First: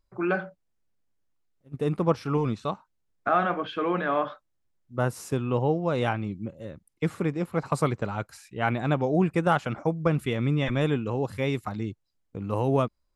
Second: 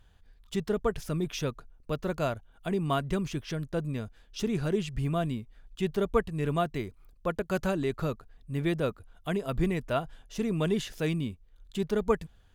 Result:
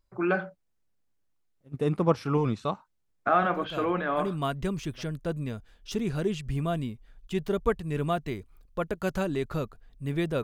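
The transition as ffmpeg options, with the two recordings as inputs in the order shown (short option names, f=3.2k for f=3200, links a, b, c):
-filter_complex "[0:a]apad=whole_dur=10.43,atrim=end=10.43,atrim=end=5.06,asetpts=PTS-STARTPTS[a];[1:a]atrim=start=1.8:end=8.91,asetpts=PTS-STARTPTS[b];[a][b]acrossfade=d=1.74:c1=qsin:c2=qsin"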